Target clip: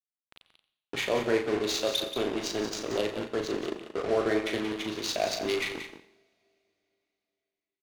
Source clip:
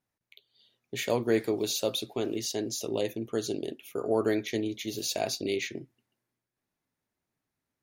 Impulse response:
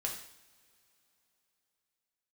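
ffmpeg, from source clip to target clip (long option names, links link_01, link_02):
-filter_complex "[0:a]highpass=frequency=71:width=0.5412,highpass=frequency=71:width=1.3066,lowshelf=frequency=420:gain=-11,bandreject=frequency=900:width=9.2,asplit=2[link_01][link_02];[link_02]alimiter=level_in=2dB:limit=-24dB:level=0:latency=1:release=417,volume=-2dB,volume=-1.5dB[link_03];[link_01][link_03]amix=inputs=2:normalize=0,acontrast=20,acrusher=bits=4:mix=0:aa=0.000001,adynamicsmooth=sensitivity=2:basefreq=1500,asplit=2[link_04][link_05];[link_05]adelay=38,volume=-6dB[link_06];[link_04][link_06]amix=inputs=2:normalize=0,aecho=1:1:180:0.335,asplit=2[link_07][link_08];[1:a]atrim=start_sample=2205,adelay=87[link_09];[link_08][link_09]afir=irnorm=-1:irlink=0,volume=-14.5dB[link_10];[link_07][link_10]amix=inputs=2:normalize=0,volume=-4dB"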